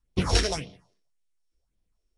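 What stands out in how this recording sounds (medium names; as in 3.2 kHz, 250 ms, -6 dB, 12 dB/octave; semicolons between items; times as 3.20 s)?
a buzz of ramps at a fixed pitch in blocks of 8 samples; phasing stages 4, 1.8 Hz, lowest notch 130–1600 Hz; Nellymoser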